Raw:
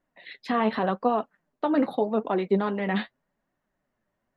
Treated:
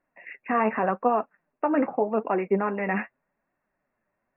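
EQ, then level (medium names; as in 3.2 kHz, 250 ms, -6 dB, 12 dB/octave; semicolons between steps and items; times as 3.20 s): brick-wall FIR low-pass 2.8 kHz; bass shelf 320 Hz -7.5 dB; +3.0 dB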